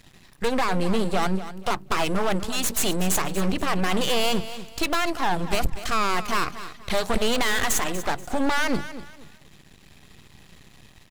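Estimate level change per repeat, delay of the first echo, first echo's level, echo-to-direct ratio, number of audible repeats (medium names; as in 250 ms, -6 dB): -10.5 dB, 241 ms, -13.5 dB, -13.0 dB, 3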